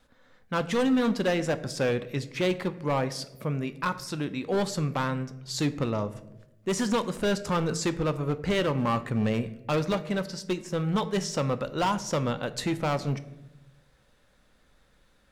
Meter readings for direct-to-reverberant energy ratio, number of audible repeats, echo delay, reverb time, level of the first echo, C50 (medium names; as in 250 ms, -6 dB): 11.0 dB, no echo, no echo, 1.0 s, no echo, 15.5 dB